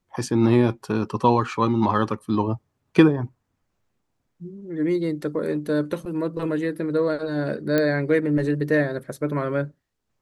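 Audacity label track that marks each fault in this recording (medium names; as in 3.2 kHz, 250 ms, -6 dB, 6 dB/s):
7.780000	7.780000	pop -9 dBFS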